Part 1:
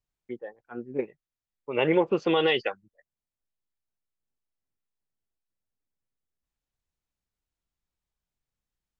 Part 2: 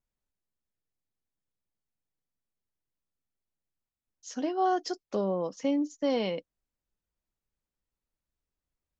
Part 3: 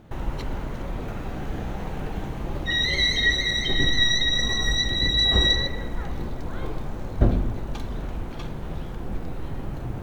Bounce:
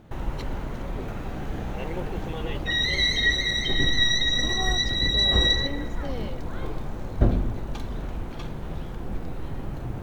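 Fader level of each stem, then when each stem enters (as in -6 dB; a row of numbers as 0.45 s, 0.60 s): -13.5 dB, -8.5 dB, -1.0 dB; 0.00 s, 0.00 s, 0.00 s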